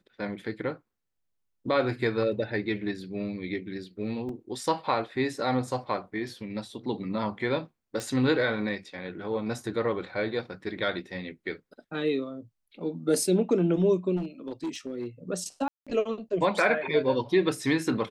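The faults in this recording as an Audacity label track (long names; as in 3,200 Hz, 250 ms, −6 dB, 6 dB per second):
4.290000	4.290000	drop-out 3.2 ms
8.000000	8.000000	click −19 dBFS
14.160000	15.070000	clipping −28 dBFS
15.680000	15.870000	drop-out 186 ms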